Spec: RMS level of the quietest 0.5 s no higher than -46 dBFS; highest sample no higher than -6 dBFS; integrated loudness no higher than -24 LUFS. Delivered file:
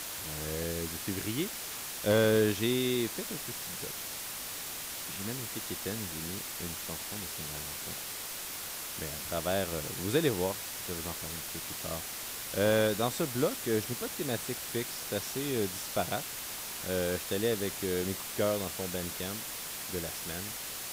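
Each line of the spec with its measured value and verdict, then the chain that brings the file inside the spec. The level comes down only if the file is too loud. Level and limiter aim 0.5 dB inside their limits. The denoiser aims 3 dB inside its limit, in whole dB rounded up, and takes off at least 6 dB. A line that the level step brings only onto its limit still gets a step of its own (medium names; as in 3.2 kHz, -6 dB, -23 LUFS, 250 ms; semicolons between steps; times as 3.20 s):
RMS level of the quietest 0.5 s -40 dBFS: fail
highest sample -15.0 dBFS: pass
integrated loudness -33.0 LUFS: pass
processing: noise reduction 9 dB, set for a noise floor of -40 dBFS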